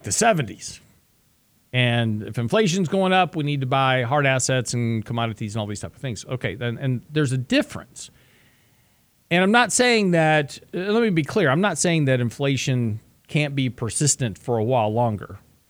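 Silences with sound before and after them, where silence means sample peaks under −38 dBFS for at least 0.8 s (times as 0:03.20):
0:00.78–0:01.73
0:08.07–0:09.31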